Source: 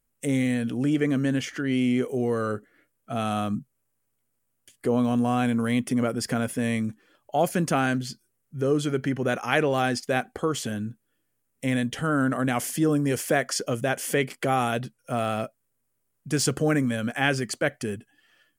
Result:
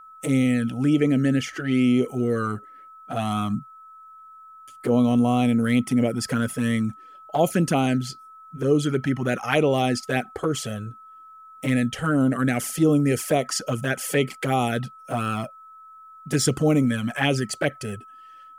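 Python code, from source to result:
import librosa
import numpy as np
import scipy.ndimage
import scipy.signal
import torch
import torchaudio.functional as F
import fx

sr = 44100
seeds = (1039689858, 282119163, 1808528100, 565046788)

y = fx.env_flanger(x, sr, rest_ms=7.6, full_db=-19.0)
y = y + 10.0 ** (-48.0 / 20.0) * np.sin(2.0 * np.pi * 1300.0 * np.arange(len(y)) / sr)
y = y * librosa.db_to_amplitude(4.5)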